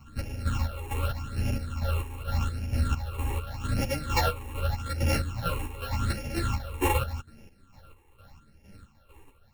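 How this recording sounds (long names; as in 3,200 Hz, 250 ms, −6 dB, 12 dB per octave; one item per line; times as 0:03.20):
a buzz of ramps at a fixed pitch in blocks of 32 samples
phaser sweep stages 8, 0.84 Hz, lowest notch 180–1,200 Hz
chopped level 2.2 Hz, depth 60%, duty 45%
a shimmering, thickened sound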